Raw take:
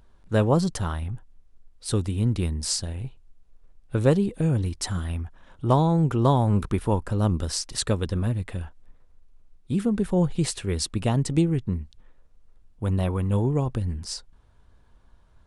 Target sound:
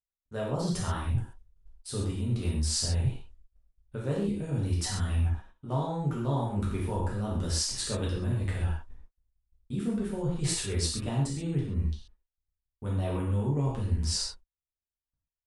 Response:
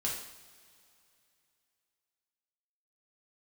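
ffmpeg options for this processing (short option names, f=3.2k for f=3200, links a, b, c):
-filter_complex "[0:a]agate=range=-53dB:threshold=-43dB:ratio=16:detection=peak,areverse,acompressor=threshold=-33dB:ratio=12,areverse[a];[1:a]atrim=start_sample=2205,atrim=end_sample=3969,asetrate=26901,aresample=44100[b];[a][b]afir=irnorm=-1:irlink=0"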